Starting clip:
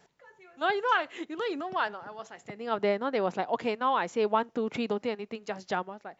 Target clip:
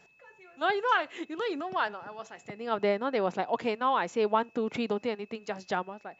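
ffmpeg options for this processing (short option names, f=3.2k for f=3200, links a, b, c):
-af "aeval=exprs='val(0)+0.000891*sin(2*PI*2600*n/s)':c=same"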